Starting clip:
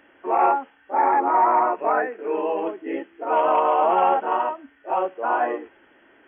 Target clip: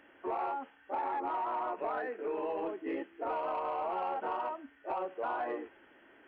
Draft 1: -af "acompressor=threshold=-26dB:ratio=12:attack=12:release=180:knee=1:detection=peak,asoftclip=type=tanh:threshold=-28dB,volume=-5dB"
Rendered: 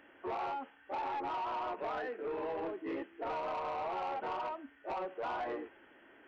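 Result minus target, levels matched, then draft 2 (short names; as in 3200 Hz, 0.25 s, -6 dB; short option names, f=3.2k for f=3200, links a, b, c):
soft clip: distortion +10 dB
-af "acompressor=threshold=-26dB:ratio=12:attack=12:release=180:knee=1:detection=peak,asoftclip=type=tanh:threshold=-20.5dB,volume=-5dB"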